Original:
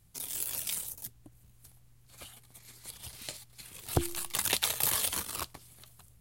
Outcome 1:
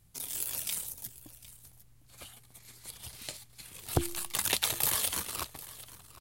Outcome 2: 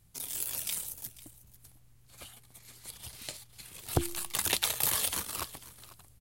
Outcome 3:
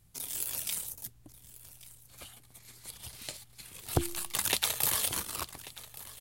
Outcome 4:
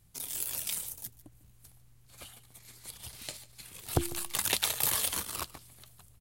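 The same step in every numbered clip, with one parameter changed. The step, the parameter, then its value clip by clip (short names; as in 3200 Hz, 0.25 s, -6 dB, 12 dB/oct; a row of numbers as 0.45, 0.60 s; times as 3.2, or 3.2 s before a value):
echo, time: 0.755, 0.495, 1.138, 0.148 s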